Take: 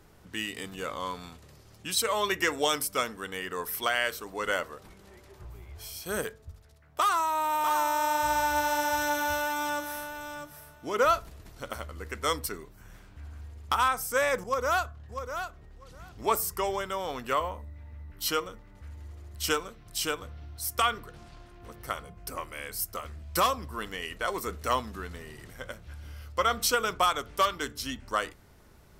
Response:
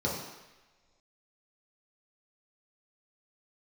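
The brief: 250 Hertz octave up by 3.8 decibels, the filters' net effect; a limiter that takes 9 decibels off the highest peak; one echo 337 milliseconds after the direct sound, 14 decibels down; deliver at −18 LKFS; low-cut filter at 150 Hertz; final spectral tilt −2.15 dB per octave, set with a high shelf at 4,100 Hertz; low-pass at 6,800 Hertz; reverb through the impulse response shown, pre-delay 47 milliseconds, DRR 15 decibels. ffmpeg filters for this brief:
-filter_complex "[0:a]highpass=150,lowpass=6800,equalizer=frequency=250:width_type=o:gain=5.5,highshelf=frequency=4100:gain=7,alimiter=limit=-19dB:level=0:latency=1,aecho=1:1:337:0.2,asplit=2[link_01][link_02];[1:a]atrim=start_sample=2205,adelay=47[link_03];[link_02][link_03]afir=irnorm=-1:irlink=0,volume=-23.5dB[link_04];[link_01][link_04]amix=inputs=2:normalize=0,volume=14dB"

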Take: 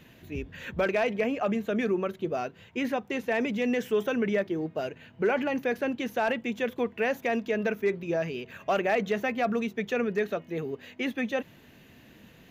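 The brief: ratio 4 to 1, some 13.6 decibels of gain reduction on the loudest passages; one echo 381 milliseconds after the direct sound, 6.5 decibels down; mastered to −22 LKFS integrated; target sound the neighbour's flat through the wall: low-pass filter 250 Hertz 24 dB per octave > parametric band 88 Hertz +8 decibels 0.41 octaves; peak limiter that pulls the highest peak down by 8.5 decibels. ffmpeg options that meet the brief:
ffmpeg -i in.wav -af "acompressor=threshold=-39dB:ratio=4,alimiter=level_in=10.5dB:limit=-24dB:level=0:latency=1,volume=-10.5dB,lowpass=frequency=250:width=0.5412,lowpass=frequency=250:width=1.3066,equalizer=frequency=88:width_type=o:width=0.41:gain=8,aecho=1:1:381:0.473,volume=27.5dB" out.wav

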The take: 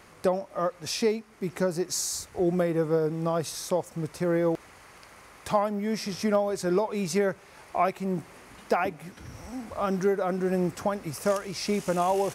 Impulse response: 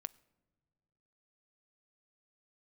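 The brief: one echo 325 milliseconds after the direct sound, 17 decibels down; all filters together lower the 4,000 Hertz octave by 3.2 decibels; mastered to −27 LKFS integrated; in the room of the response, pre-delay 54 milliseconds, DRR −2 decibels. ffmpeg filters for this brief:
-filter_complex "[0:a]equalizer=frequency=4000:width_type=o:gain=-4.5,aecho=1:1:325:0.141,asplit=2[link_01][link_02];[1:a]atrim=start_sample=2205,adelay=54[link_03];[link_02][link_03]afir=irnorm=-1:irlink=0,volume=5.5dB[link_04];[link_01][link_04]amix=inputs=2:normalize=0,volume=-3dB"

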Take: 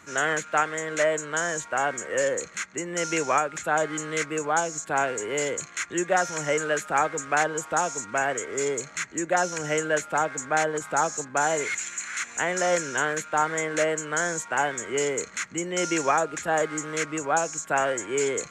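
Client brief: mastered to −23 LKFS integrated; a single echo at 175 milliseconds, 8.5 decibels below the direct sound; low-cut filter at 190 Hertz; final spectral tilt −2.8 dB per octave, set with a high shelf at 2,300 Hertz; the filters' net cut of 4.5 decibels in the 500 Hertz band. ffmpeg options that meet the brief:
ffmpeg -i in.wav -af "highpass=190,equalizer=frequency=500:width_type=o:gain=-5,highshelf=frequency=2300:gain=-7.5,aecho=1:1:175:0.376,volume=6.5dB" out.wav

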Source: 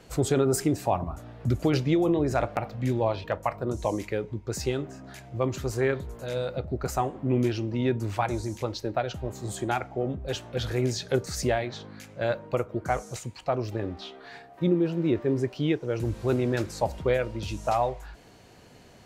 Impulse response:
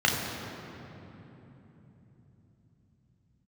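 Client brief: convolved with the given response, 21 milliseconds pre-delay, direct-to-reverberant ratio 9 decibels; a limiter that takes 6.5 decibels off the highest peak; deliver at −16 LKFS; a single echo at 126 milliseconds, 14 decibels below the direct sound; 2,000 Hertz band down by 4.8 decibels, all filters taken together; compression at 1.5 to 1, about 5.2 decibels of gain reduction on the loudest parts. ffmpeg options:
-filter_complex "[0:a]equalizer=frequency=2000:width_type=o:gain=-6.5,acompressor=threshold=-34dB:ratio=1.5,alimiter=limit=-22.5dB:level=0:latency=1,aecho=1:1:126:0.2,asplit=2[link_01][link_02];[1:a]atrim=start_sample=2205,adelay=21[link_03];[link_02][link_03]afir=irnorm=-1:irlink=0,volume=-24.5dB[link_04];[link_01][link_04]amix=inputs=2:normalize=0,volume=17.5dB"

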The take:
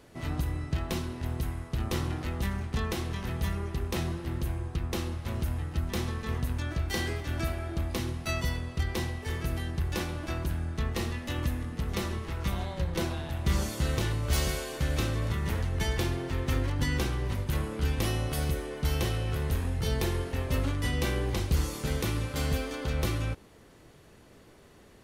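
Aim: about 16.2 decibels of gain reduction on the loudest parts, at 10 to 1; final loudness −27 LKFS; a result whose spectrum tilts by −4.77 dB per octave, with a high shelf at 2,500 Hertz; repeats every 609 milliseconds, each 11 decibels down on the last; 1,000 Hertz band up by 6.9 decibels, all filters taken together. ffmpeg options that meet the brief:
ffmpeg -i in.wav -af "equalizer=frequency=1000:width_type=o:gain=7.5,highshelf=frequency=2500:gain=6.5,acompressor=threshold=-39dB:ratio=10,aecho=1:1:609|1218|1827:0.282|0.0789|0.0221,volume=16dB" out.wav

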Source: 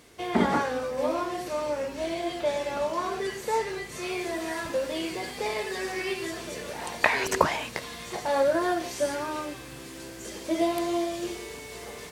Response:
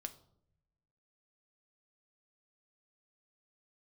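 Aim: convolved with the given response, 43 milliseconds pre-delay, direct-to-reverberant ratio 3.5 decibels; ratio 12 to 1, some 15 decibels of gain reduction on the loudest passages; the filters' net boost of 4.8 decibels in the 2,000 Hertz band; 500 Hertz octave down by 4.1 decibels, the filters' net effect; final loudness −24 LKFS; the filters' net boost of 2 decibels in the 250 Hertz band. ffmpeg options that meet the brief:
-filter_complex "[0:a]equalizer=frequency=250:width_type=o:gain=6.5,equalizer=frequency=500:width_type=o:gain=-8,equalizer=frequency=2000:width_type=o:gain=6,acompressor=threshold=-28dB:ratio=12,asplit=2[link_01][link_02];[1:a]atrim=start_sample=2205,adelay=43[link_03];[link_02][link_03]afir=irnorm=-1:irlink=0,volume=0dB[link_04];[link_01][link_04]amix=inputs=2:normalize=0,volume=7.5dB"

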